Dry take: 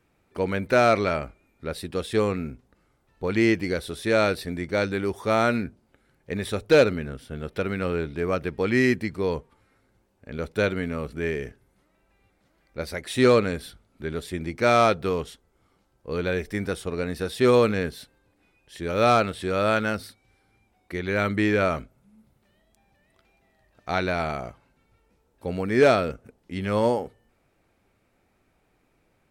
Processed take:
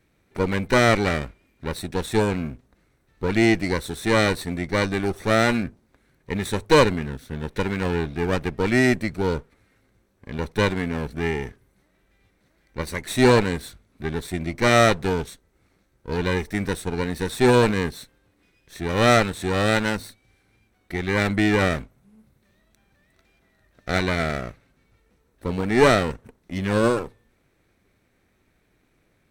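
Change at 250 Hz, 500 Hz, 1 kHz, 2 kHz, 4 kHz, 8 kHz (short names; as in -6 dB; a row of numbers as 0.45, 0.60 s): +3.5, +0.5, +1.5, +4.0, +5.5, +7.5 dB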